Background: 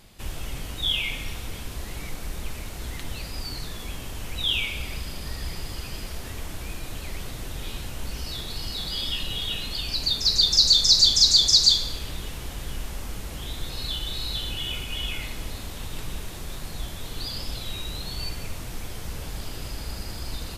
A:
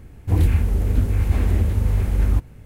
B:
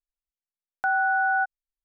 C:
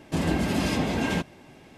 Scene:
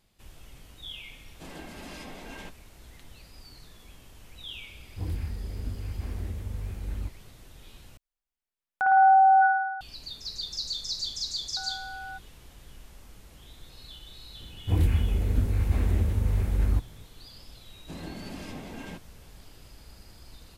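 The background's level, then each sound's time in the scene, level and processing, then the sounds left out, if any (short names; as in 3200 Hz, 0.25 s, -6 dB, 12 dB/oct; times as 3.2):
background -16 dB
1.28 add C -13.5 dB + low shelf 280 Hz -12 dB
4.69 add A -15.5 dB
7.97 replace with B -1.5 dB + spring tank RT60 1.2 s, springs 53 ms, chirp 80 ms, DRR -3 dB
10.73 add B -17 dB
14.4 add A -6 dB
17.76 add C -15 dB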